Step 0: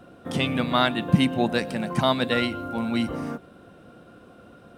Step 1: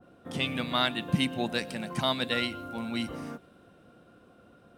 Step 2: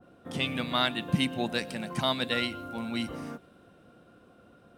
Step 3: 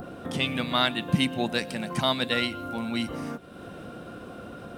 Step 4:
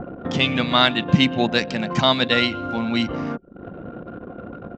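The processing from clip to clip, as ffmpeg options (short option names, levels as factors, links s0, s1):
-af "adynamicequalizer=threshold=0.0126:dfrequency=1800:dqfactor=0.7:tfrequency=1800:tqfactor=0.7:attack=5:release=100:ratio=0.375:range=3.5:mode=boostabove:tftype=highshelf,volume=0.398"
-af anull
-af "acompressor=mode=upward:threshold=0.0282:ratio=2.5,volume=1.41"
-af "aresample=16000,aresample=44100,anlmdn=0.631,volume=2.37"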